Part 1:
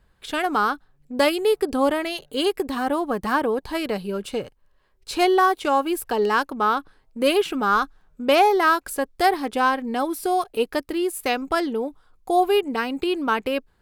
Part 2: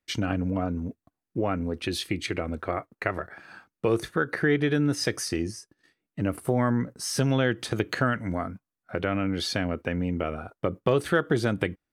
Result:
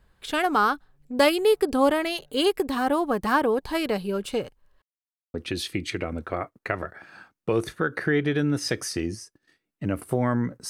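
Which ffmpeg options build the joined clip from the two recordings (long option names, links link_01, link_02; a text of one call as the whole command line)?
ffmpeg -i cue0.wav -i cue1.wav -filter_complex "[0:a]apad=whole_dur=10.69,atrim=end=10.69,asplit=2[link_01][link_02];[link_01]atrim=end=4.82,asetpts=PTS-STARTPTS,afade=type=out:start_time=4.816:duration=0.004:curve=hsin[link_03];[link_02]atrim=start=4.82:end=5.34,asetpts=PTS-STARTPTS,volume=0[link_04];[1:a]atrim=start=1.7:end=7.05,asetpts=PTS-STARTPTS,afade=type=in:duration=0.004:curve=hsin[link_05];[link_03][link_04][link_05]concat=n=3:v=0:a=1" out.wav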